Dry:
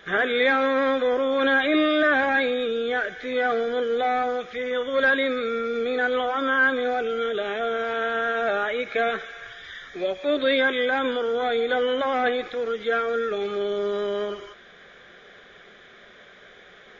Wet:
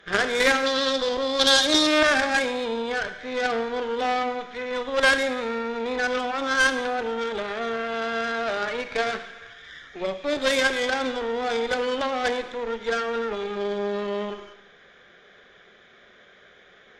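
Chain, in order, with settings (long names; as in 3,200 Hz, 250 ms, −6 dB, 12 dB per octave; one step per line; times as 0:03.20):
harmonic generator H 2 −10 dB, 3 −14 dB, 8 −22 dB, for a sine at −10 dBFS
0:00.66–0:01.87: high shelf with overshoot 3,000 Hz +7 dB, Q 3
four-comb reverb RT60 0.84 s, combs from 31 ms, DRR 10.5 dB
level +3.5 dB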